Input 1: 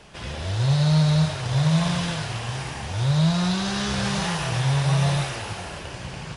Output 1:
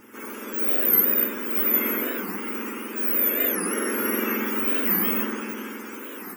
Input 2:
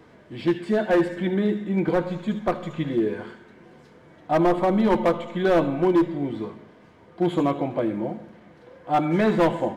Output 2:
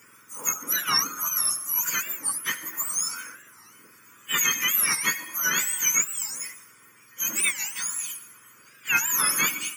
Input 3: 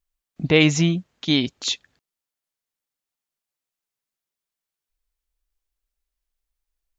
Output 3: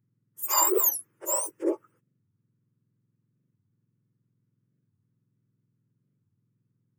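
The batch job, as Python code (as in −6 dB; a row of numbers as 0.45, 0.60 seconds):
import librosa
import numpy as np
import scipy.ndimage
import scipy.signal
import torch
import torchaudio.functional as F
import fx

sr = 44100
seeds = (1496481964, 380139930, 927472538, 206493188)

y = fx.octave_mirror(x, sr, pivot_hz=1500.0)
y = fx.fixed_phaser(y, sr, hz=1700.0, stages=4)
y = fx.record_warp(y, sr, rpm=45.0, depth_cents=250.0)
y = y * 10.0 ** (-9 / 20.0) / np.max(np.abs(y))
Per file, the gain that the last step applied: +5.0, +7.0, +2.0 decibels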